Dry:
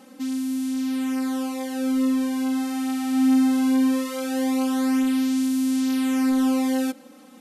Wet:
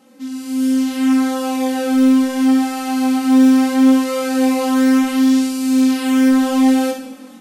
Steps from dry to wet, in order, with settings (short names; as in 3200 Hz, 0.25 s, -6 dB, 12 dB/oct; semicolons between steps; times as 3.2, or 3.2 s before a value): on a send at -5 dB: reverb RT60 0.75 s, pre-delay 46 ms; on the sum: AGC gain up to 11.5 dB; chorus 0.72 Hz, delay 17.5 ms, depth 4.9 ms; Doppler distortion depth 0.18 ms